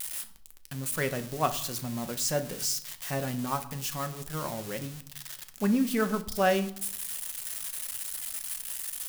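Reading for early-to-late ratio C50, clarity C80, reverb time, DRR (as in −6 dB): 14.5 dB, 18.0 dB, 0.65 s, 8.0 dB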